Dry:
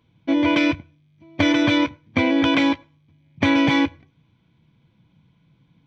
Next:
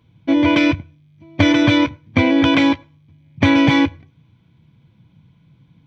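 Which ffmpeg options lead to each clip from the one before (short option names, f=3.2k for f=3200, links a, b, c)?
-af "equalizer=f=100:w=0.86:g=6.5,volume=3dB"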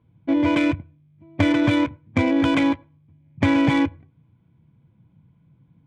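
-af "adynamicsmooth=sensitivity=0.5:basefreq=1.9k,volume=-4.5dB"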